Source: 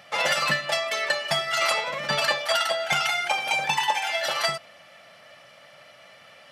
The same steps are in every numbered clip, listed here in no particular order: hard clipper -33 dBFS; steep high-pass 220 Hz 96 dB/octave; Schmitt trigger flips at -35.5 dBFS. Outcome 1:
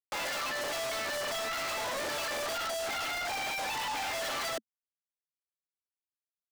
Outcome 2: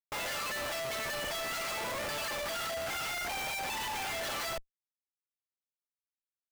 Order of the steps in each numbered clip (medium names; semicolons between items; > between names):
Schmitt trigger > steep high-pass > hard clipper; steep high-pass > hard clipper > Schmitt trigger